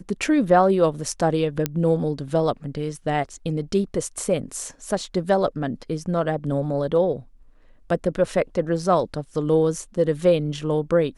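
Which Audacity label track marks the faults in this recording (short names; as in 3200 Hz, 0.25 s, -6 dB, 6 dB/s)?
1.660000	1.660000	pop -7 dBFS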